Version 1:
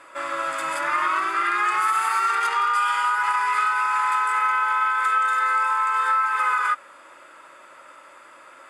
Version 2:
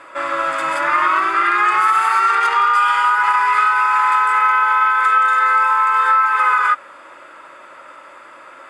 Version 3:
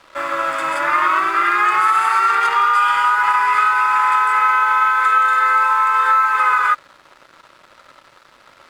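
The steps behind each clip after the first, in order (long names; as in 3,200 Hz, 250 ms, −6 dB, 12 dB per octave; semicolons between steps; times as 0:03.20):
high-shelf EQ 6,000 Hz −12 dB; level +7.5 dB
dead-zone distortion −40.5 dBFS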